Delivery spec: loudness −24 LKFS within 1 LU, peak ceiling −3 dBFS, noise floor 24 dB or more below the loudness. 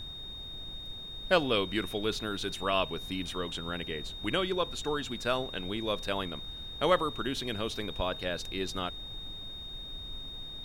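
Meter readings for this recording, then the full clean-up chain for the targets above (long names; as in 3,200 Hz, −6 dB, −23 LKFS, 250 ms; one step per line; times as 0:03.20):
interfering tone 3,700 Hz; level of the tone −41 dBFS; background noise floor −43 dBFS; target noise floor −57 dBFS; integrated loudness −33.0 LKFS; sample peak −12.5 dBFS; target loudness −24.0 LKFS
→ notch filter 3,700 Hz, Q 30
noise reduction from a noise print 14 dB
level +9 dB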